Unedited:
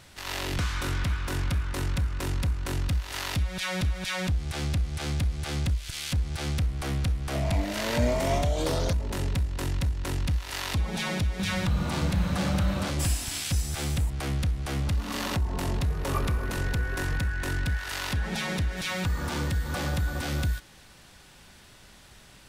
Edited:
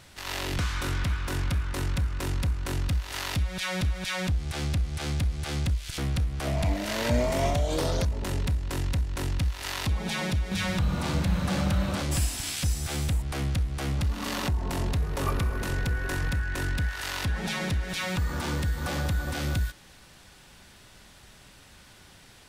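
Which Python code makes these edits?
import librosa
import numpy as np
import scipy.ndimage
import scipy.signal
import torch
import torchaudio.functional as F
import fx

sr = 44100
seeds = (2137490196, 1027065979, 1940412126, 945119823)

y = fx.edit(x, sr, fx.cut(start_s=5.98, length_s=0.88), tone=tone)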